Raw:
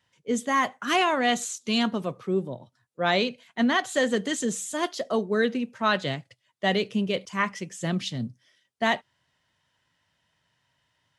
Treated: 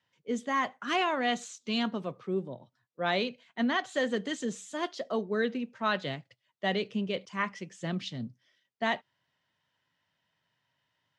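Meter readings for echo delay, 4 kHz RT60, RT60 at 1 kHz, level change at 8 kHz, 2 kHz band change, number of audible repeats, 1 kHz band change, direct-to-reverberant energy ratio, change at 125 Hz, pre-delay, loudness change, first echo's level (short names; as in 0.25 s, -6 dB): none, none, none, -12.0 dB, -5.5 dB, none, -5.5 dB, none, -6.5 dB, none, -5.5 dB, none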